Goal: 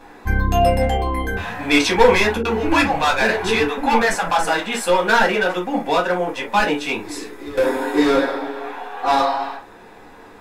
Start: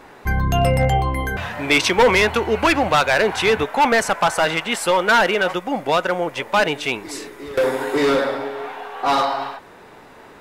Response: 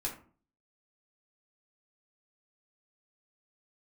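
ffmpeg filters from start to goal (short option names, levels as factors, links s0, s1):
-filter_complex "[0:a]asettb=1/sr,asplit=3[s0][s1][s2];[s0]atrim=end=2.364[s3];[s1]atrim=start=2.36:end=4.6,asetpts=PTS-STARTPTS,afade=t=in:d=0.004:c=qsin,afade=t=out:st=2.236:d=0.004:c=qsin,acrossover=split=450[s4][s5];[s5]adelay=90[s6];[s4][s6]amix=inputs=2:normalize=0,atrim=end_sample=98784[s7];[s2]atrim=start=4.596[s8];[s3][s7]acrossfade=d=0.004:c1=hsin:c2=qsin[s9];[s9][s8]acrossfade=d=0.004:c1=qsin:c2=hsin[s10];[1:a]atrim=start_sample=2205,atrim=end_sample=3087[s11];[s10][s11]afir=irnorm=-1:irlink=0,volume=0.841"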